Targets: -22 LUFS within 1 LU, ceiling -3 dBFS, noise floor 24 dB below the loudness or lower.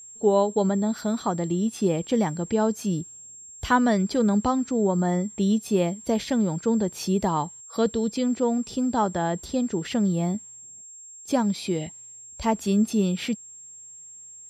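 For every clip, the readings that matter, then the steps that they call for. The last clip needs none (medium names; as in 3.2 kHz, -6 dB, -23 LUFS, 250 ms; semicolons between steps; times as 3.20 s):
steady tone 7.5 kHz; tone level -42 dBFS; loudness -25.0 LUFS; peak level -8.5 dBFS; loudness target -22.0 LUFS
-> band-stop 7.5 kHz, Q 30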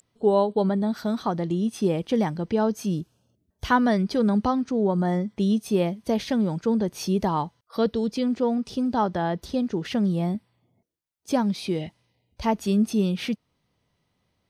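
steady tone not found; loudness -25.0 LUFS; peak level -8.5 dBFS; loudness target -22.0 LUFS
-> trim +3 dB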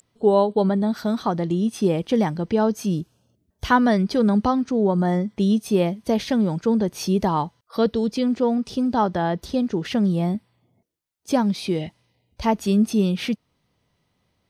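loudness -22.0 LUFS; peak level -5.5 dBFS; noise floor -71 dBFS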